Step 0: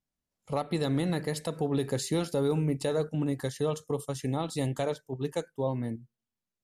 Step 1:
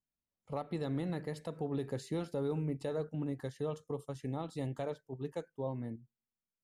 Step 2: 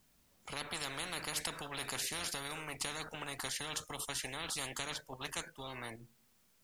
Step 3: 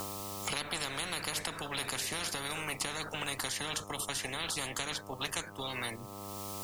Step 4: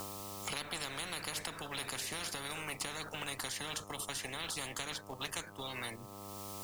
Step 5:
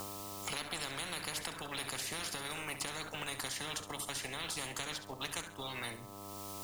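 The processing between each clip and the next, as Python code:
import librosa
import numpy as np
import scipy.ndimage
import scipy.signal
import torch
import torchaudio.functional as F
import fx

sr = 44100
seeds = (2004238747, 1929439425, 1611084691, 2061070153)

y1 = fx.high_shelf(x, sr, hz=3600.0, db=-11.5)
y1 = y1 * librosa.db_to_amplitude(-7.5)
y2 = fx.spectral_comp(y1, sr, ratio=10.0)
y2 = y2 * librosa.db_to_amplitude(5.0)
y3 = fx.dmg_buzz(y2, sr, base_hz=100.0, harmonics=13, level_db=-57.0, tilt_db=-2, odd_only=False)
y3 = fx.band_squash(y3, sr, depth_pct=100)
y3 = y3 * librosa.db_to_amplitude(3.5)
y4 = fx.quant_float(y3, sr, bits=2)
y4 = y4 * librosa.db_to_amplitude(-4.0)
y5 = fx.echo_feedback(y4, sr, ms=67, feedback_pct=34, wet_db=-11.5)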